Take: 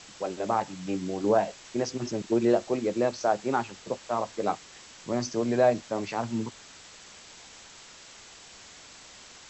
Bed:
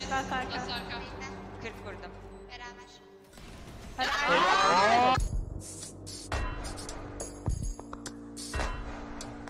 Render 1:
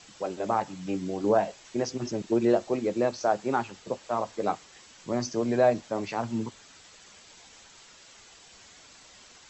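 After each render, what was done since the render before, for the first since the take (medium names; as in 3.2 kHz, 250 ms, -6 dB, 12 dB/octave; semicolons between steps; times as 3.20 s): noise reduction 6 dB, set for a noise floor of -50 dBFS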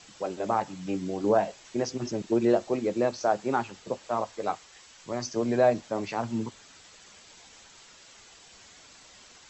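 4.24–5.36 s: peaking EQ 220 Hz -7 dB 2 oct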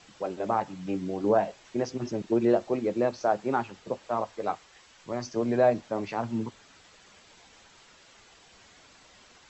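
treble shelf 5.3 kHz -11 dB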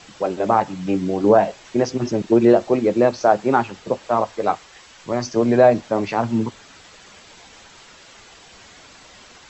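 trim +10 dB; peak limiter -3 dBFS, peak gain reduction 1.5 dB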